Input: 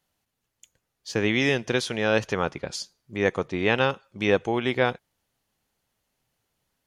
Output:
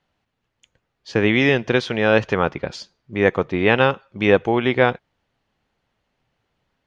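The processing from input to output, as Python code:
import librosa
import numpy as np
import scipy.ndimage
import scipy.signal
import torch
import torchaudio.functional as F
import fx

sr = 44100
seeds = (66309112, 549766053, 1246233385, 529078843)

y = scipy.signal.sosfilt(scipy.signal.butter(2, 3200.0, 'lowpass', fs=sr, output='sos'), x)
y = F.gain(torch.from_numpy(y), 6.5).numpy()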